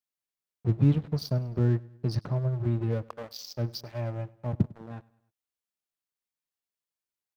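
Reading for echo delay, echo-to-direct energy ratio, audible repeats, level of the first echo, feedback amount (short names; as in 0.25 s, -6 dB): 0.101 s, -22.0 dB, 2, -23.0 dB, 50%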